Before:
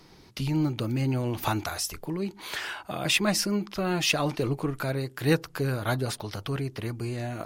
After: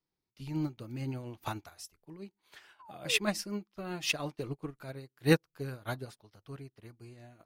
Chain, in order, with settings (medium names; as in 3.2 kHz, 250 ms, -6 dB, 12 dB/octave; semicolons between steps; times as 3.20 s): painted sound fall, 2.79–3.19 s, 400–1100 Hz -33 dBFS; upward expansion 2.5:1, over -43 dBFS